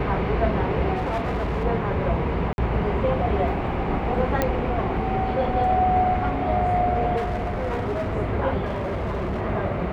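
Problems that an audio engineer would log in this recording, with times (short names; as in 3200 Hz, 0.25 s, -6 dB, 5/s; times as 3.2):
0.95–1.65 clipped -21.5 dBFS
2.53–2.58 gap 51 ms
4.42 pop -8 dBFS
7.16–8.17 clipped -22.5 dBFS
8.66–9.42 clipped -23 dBFS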